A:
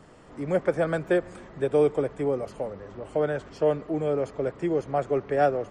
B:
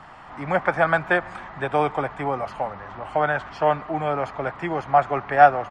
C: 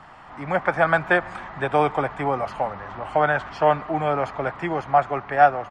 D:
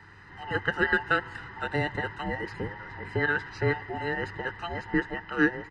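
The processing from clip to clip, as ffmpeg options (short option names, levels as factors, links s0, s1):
-af "firequalizer=gain_entry='entry(130,0);entry(460,-8);entry(770,13);entry(7300,-6)':delay=0.05:min_phase=1,volume=1.26"
-af "dynaudnorm=f=520:g=3:m=1.58,volume=0.841"
-af "afftfilt=real='real(if(between(b,1,1008),(2*floor((b-1)/48)+1)*48-b,b),0)':imag='imag(if(between(b,1,1008),(2*floor((b-1)/48)+1)*48-b,b),0)*if(between(b,1,1008),-1,1)':win_size=2048:overlap=0.75,equalizer=f=100:t=o:w=0.33:g=11,equalizer=f=250:t=o:w=0.33:g=-11,equalizer=f=630:t=o:w=0.33:g=-10,equalizer=f=1000:t=o:w=0.33:g=4,equalizer=f=1600:t=o:w=0.33:g=5,equalizer=f=5000:t=o:w=0.33:g=6,volume=0.447"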